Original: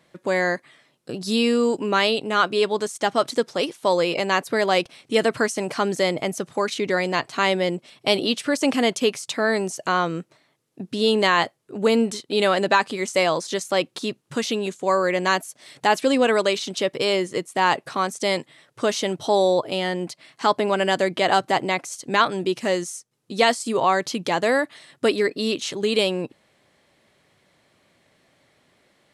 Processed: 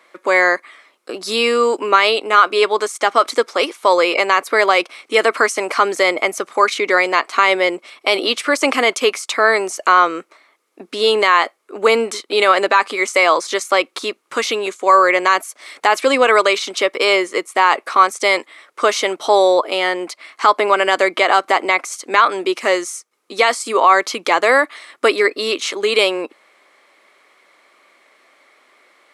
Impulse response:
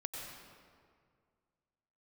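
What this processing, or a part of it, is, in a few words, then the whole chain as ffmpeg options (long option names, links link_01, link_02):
laptop speaker: -af "highpass=frequency=320:width=0.5412,highpass=frequency=320:width=1.3066,equalizer=frequency=1200:width_type=o:width=0.54:gain=10.5,equalizer=frequency=2200:width_type=o:width=0.26:gain=9,alimiter=limit=-7dB:level=0:latency=1:release=47,volume=5.5dB"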